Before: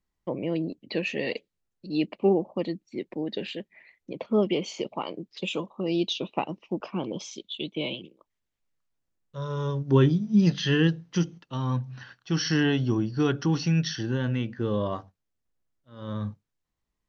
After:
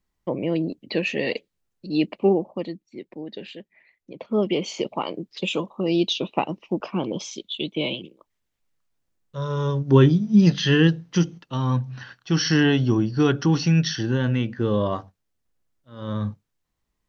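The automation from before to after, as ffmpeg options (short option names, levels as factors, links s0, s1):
-af "volume=4.73,afade=t=out:st=2.09:d=0.77:silence=0.375837,afade=t=in:st=4.11:d=0.64:silence=0.354813"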